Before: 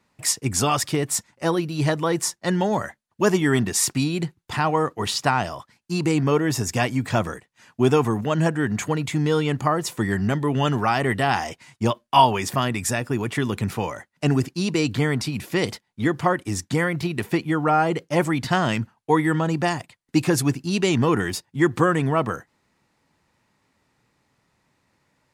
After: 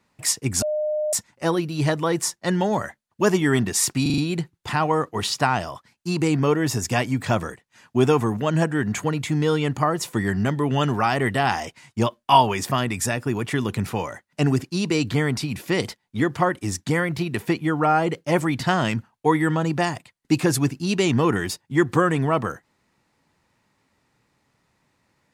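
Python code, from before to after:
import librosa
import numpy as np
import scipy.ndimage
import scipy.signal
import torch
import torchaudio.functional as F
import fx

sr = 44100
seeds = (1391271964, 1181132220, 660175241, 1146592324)

y = fx.edit(x, sr, fx.bleep(start_s=0.62, length_s=0.51, hz=608.0, db=-21.0),
    fx.stutter(start_s=4.02, slice_s=0.04, count=5), tone=tone)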